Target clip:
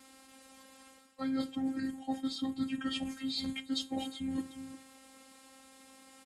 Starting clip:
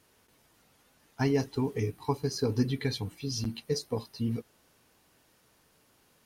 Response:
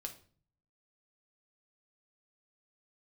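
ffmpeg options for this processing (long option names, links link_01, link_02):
-filter_complex "[0:a]asplit=2[link_01][link_02];[1:a]atrim=start_sample=2205[link_03];[link_02][link_03]afir=irnorm=-1:irlink=0,volume=-0.5dB[link_04];[link_01][link_04]amix=inputs=2:normalize=0,afftfilt=real='hypot(re,im)*cos(PI*b)':imag='0':win_size=512:overlap=0.75,aecho=1:1:360:0.112,areverse,acompressor=threshold=-39dB:ratio=8,areverse,asetrate=34006,aresample=44100,atempo=1.29684,highpass=66,volume=8dB"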